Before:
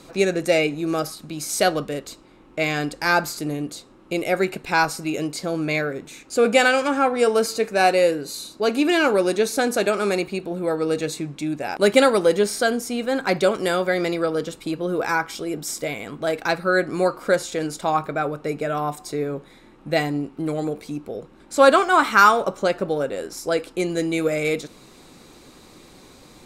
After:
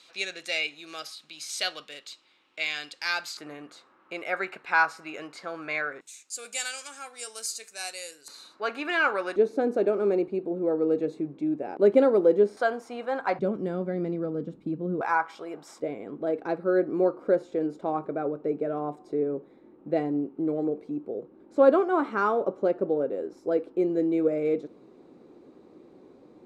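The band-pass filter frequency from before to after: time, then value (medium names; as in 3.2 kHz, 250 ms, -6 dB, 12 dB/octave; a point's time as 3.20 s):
band-pass filter, Q 1.5
3.4 kHz
from 3.37 s 1.4 kHz
from 6.01 s 7.8 kHz
from 8.28 s 1.4 kHz
from 9.36 s 370 Hz
from 12.57 s 900 Hz
from 13.39 s 210 Hz
from 15.01 s 930 Hz
from 15.80 s 370 Hz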